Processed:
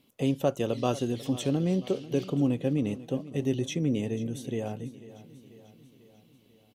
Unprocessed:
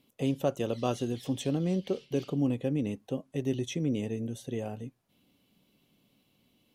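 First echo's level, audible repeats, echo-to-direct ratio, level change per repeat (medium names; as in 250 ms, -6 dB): -17.0 dB, 4, -15.5 dB, -5.0 dB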